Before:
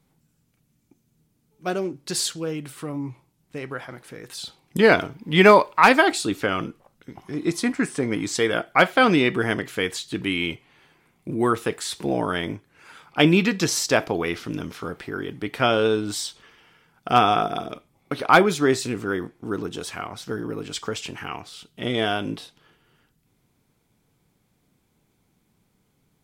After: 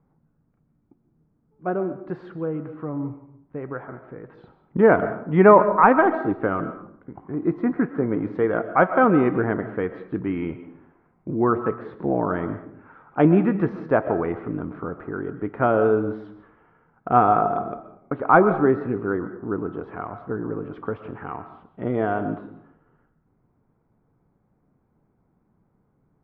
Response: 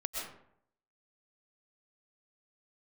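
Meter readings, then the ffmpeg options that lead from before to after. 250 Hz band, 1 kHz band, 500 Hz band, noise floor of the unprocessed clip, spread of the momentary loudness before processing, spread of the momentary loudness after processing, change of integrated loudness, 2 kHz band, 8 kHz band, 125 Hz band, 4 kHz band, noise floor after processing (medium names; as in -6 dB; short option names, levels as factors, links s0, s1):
+1.5 dB, +1.0 dB, +1.5 dB, -68 dBFS, 18 LU, 18 LU, 0.0 dB, -5.5 dB, under -40 dB, +1.5 dB, under -25 dB, -68 dBFS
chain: -filter_complex "[0:a]lowpass=f=1400:w=0.5412,lowpass=f=1400:w=1.3066,asplit=2[s0][s1];[1:a]atrim=start_sample=2205[s2];[s1][s2]afir=irnorm=-1:irlink=0,volume=0.355[s3];[s0][s3]amix=inputs=2:normalize=0,volume=0.891"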